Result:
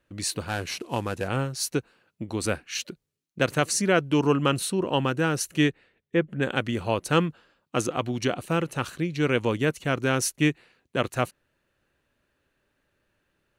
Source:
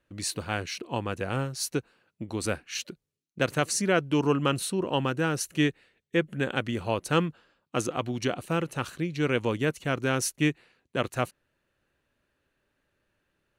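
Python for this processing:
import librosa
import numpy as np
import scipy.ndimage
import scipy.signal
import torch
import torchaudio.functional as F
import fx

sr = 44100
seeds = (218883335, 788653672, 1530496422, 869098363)

y = fx.cvsd(x, sr, bps=64000, at=(0.47, 1.28))
y = fx.lowpass(y, sr, hz=fx.line((5.69, 2900.0), (6.41, 1400.0)), slope=6, at=(5.69, 6.41), fade=0.02)
y = F.gain(torch.from_numpy(y), 2.5).numpy()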